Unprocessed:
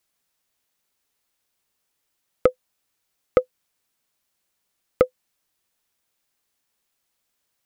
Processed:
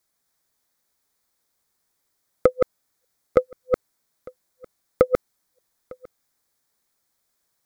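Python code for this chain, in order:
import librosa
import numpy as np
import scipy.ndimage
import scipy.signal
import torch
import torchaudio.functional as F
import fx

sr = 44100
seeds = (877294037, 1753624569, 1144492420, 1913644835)

p1 = fx.reverse_delay(x, sr, ms=254, wet_db=-4)
p2 = fx.peak_eq(p1, sr, hz=2800.0, db=-12.0, octaves=0.39)
p3 = p2 + fx.echo_single(p2, sr, ms=903, db=-24.0, dry=0)
y = F.gain(torch.from_numpy(p3), 1.0).numpy()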